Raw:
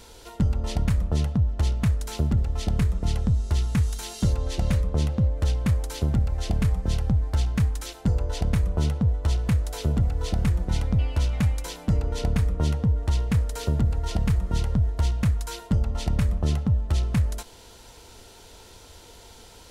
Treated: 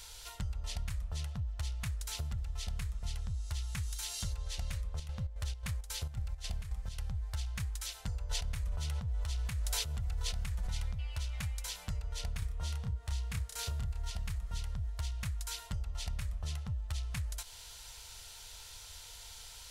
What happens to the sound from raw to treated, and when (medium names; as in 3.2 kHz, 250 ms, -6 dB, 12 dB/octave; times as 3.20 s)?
4.82–7.03 s: square tremolo 3.7 Hz, depth 65%, duty 65%
8.31–10.95 s: level flattener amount 100%
12.39–14.10 s: doubling 30 ms -2 dB
whole clip: amplifier tone stack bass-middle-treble 10-0-10; compression 3:1, threshold -39 dBFS; trim +2.5 dB